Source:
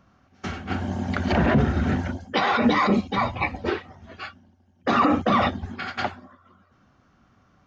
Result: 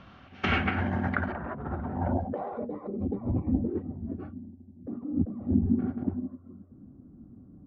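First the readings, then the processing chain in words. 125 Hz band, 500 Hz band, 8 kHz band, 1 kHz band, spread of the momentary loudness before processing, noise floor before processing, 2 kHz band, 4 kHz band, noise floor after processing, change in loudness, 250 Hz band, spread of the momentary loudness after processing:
−4.0 dB, −9.0 dB, can't be measured, −12.5 dB, 15 LU, −61 dBFS, −7.5 dB, below −10 dB, −53 dBFS, −7.5 dB, −4.5 dB, 18 LU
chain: compressor whose output falls as the input rises −32 dBFS, ratio −1
low-pass filter sweep 3,300 Hz → 280 Hz, 0:00.19–0:03.48

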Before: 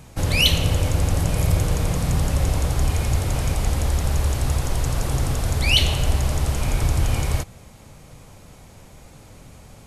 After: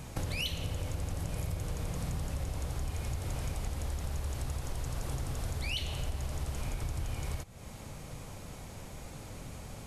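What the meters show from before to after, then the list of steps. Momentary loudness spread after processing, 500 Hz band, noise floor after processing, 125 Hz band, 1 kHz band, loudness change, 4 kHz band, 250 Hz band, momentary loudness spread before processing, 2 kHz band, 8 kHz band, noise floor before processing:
12 LU, −14.5 dB, −47 dBFS, −15.0 dB, −14.0 dB, −16.5 dB, −17.5 dB, −14.0 dB, 6 LU, −15.5 dB, −14.5 dB, −46 dBFS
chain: downward compressor 5 to 1, threshold −34 dBFS, peak gain reduction 19.5 dB

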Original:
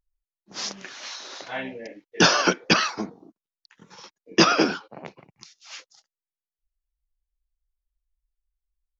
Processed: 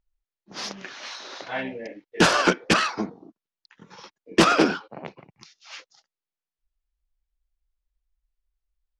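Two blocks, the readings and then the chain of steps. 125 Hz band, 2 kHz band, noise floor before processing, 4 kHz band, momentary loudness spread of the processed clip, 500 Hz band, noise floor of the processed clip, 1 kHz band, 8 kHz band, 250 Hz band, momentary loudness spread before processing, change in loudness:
+0.5 dB, 0.0 dB, below −85 dBFS, −3.0 dB, 22 LU, +1.0 dB, below −85 dBFS, +1.0 dB, can't be measured, +1.0 dB, 22 LU, −0.5 dB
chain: phase distortion by the signal itself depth 0.17 ms
high-frequency loss of the air 100 metres
level +2.5 dB

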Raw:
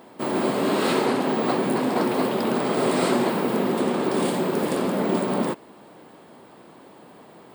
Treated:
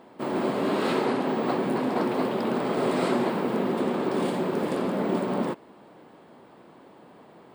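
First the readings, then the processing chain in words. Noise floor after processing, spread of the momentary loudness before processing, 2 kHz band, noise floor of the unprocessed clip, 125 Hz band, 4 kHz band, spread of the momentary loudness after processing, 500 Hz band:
−52 dBFS, 3 LU, −4.0 dB, −49 dBFS, −3.0 dB, −6.0 dB, 3 LU, −3.0 dB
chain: high-shelf EQ 5,800 Hz −11.5 dB
level −3 dB

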